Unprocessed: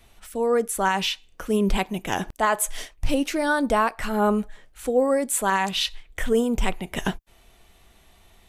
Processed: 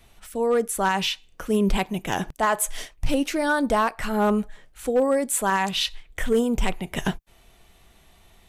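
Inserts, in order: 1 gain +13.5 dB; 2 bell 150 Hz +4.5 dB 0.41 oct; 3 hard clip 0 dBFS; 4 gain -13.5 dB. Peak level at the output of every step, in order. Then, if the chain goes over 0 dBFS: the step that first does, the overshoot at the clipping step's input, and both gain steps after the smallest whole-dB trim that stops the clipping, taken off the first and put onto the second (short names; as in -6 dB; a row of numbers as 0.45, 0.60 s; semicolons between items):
+4.5, +4.5, 0.0, -13.5 dBFS; step 1, 4.5 dB; step 1 +8.5 dB, step 4 -8.5 dB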